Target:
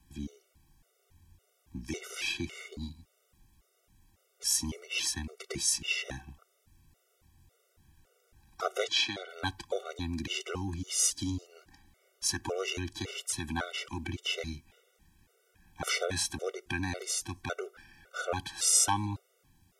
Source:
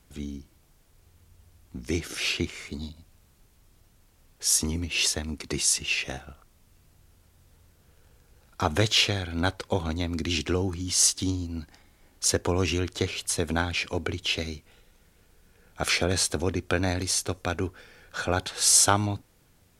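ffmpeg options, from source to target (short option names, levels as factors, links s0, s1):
-filter_complex "[0:a]asettb=1/sr,asplit=3[s0][s1][s2];[s0]atrim=end=8.844[s3];[s1]atrim=start=8.84:end=9.29,asetpts=PTS-STARTPTS,afade=t=in:d=0.004:c=qsin,afade=t=out:st=0.446:d=0.004:c=qsin,highpass=270,lowpass=6300[s4];[s2]atrim=start=9.286[s5];[s3][s4]acrossfade=d=0.004:c1=hsin:c2=qsin[s6];[s6][s5]acrossfade=d=0.004:c1=qsin:c2=hsin,acrossover=split=390|1100|4600[s7][s8][s9][s10];[s7]alimiter=level_in=1.33:limit=0.0631:level=0:latency=1,volume=0.75[s11];[s11][s8][s9][s10]amix=inputs=4:normalize=0,bandreject=f=4300:w=15,afftfilt=real='re*gt(sin(2*PI*1.8*pts/sr)*(1-2*mod(floor(b*sr/1024/380),2)),0)':imag='im*gt(sin(2*PI*1.8*pts/sr)*(1-2*mod(floor(b*sr/1024/380),2)),0)':win_size=1024:overlap=0.75,volume=0.75"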